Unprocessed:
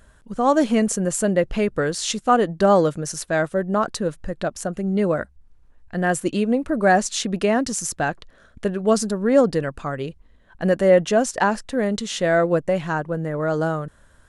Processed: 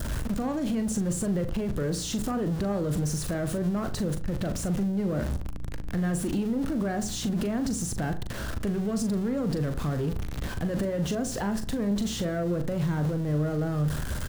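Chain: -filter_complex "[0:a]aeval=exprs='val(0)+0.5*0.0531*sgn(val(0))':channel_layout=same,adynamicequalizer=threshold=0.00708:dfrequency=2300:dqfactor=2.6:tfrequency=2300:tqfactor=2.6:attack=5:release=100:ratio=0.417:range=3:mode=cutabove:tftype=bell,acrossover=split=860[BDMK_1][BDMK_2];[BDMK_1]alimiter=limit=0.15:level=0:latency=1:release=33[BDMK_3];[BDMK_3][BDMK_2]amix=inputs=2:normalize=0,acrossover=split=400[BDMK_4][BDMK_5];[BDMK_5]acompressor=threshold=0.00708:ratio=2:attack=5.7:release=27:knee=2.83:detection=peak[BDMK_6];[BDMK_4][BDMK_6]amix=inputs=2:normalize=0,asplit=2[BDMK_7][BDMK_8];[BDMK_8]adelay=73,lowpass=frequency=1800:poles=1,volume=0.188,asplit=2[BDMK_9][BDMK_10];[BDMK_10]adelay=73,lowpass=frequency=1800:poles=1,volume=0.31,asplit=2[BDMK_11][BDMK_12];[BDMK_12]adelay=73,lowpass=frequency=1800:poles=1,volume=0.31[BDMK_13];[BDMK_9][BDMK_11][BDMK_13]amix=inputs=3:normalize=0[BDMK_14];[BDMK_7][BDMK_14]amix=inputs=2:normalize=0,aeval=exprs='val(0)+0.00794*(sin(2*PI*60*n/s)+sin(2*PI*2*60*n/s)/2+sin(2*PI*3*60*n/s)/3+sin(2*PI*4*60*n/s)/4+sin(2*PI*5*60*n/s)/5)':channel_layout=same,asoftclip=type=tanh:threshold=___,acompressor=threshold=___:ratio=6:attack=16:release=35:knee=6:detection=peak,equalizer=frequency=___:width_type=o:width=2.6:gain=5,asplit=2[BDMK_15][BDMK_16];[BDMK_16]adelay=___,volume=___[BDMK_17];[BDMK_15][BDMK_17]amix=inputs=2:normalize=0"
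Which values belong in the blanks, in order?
0.119, 0.0316, 93, 40, 0.355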